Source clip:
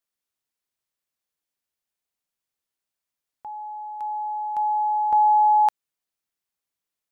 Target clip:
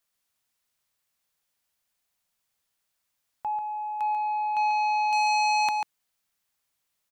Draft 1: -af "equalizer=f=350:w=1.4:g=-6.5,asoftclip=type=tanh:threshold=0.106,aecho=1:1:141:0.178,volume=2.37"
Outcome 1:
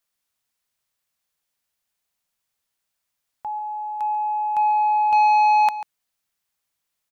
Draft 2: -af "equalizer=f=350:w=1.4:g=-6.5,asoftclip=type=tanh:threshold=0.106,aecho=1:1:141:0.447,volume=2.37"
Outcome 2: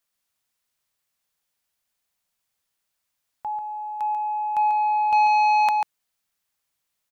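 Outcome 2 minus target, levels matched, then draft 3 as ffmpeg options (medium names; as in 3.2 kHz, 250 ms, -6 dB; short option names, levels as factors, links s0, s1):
saturation: distortion -6 dB
-af "equalizer=f=350:w=1.4:g=-6.5,asoftclip=type=tanh:threshold=0.0473,aecho=1:1:141:0.447,volume=2.37"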